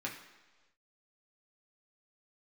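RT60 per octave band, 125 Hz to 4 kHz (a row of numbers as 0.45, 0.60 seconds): 1.1, 1.1, 1.3, 1.2, 1.2, 1.3 seconds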